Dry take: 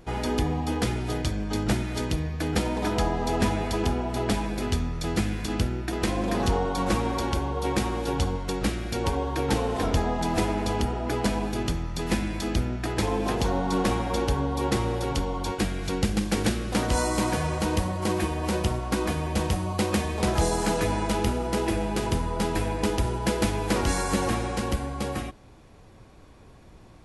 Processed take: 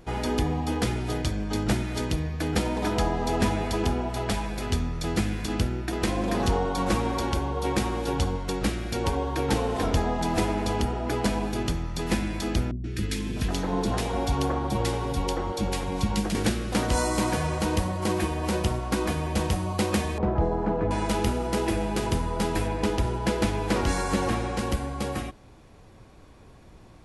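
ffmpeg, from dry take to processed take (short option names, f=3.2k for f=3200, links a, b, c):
-filter_complex "[0:a]asettb=1/sr,asplit=3[a][b][c];[a]atrim=end=4.094[d];[b]atrim=start=4.09:end=4.7,asetpts=PTS-STARTPTS,afade=t=in:d=0.004:c=qsin,afade=t=out:st=0.606:d=0.004:c=qsin,equalizer=f=290:w=1.3:g=-7[e];[c]atrim=start=4.696[f];[d][e]acrossfade=d=0.004:c1=hsin:c2=qsin[g];[g][f]acrossfade=d=0.004:c1=qsin:c2=hsin,asettb=1/sr,asplit=3[h][i][j];[h]atrim=end=12.714[k];[i]atrim=start=12.71:end=16.35,asetpts=PTS-STARTPTS,afade=t=in:d=0.004:c=qsin,afade=t=out:st=3.636:d=0.004:c=qsin,acrossover=split=340|1600[l][m][n];[n]adelay=130[o];[m]adelay=650[p];[l][p][o]amix=inputs=3:normalize=0,atrim=end_sample=160524[q];[j]atrim=start=16.346[r];[k][q]acrossfade=d=0.004:c1=hsin:c2=qsin[s];[s][r]acrossfade=d=0.004:c1=qsin:c2=hsin,asettb=1/sr,asplit=3[t][u][v];[t]atrim=end=20.184[w];[u]atrim=start=20.18:end=20.91,asetpts=PTS-STARTPTS,afade=t=in:d=0.004:c=qsin,afade=t=out:st=0.726:d=0.004:c=qsin,lowpass=1k[x];[v]atrim=start=20.906[y];[w][x]acrossfade=d=0.004:c1=hsin:c2=qsin[z];[z][y]acrossfade=d=0.004:c1=qsin:c2=hsin,asettb=1/sr,asplit=3[aa][ab][ac];[aa]atrim=end=22.674[ad];[ab]atrim=start=22.67:end=24.59,asetpts=PTS-STARTPTS,afade=t=in:d=0.004:c=qsin,afade=t=out:st=1.916:d=0.004:c=qsin,highshelf=f=7.4k:g=-7.5[ae];[ac]atrim=start=24.586[af];[ad][ae]acrossfade=d=0.004:c1=hsin:c2=qsin[ag];[ag][af]acrossfade=d=0.004:c1=qsin:c2=hsin"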